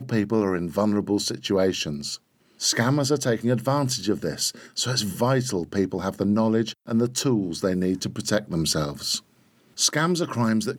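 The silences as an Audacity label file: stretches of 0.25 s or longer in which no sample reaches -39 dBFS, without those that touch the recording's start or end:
2.160000	2.600000	silence
9.190000	9.770000	silence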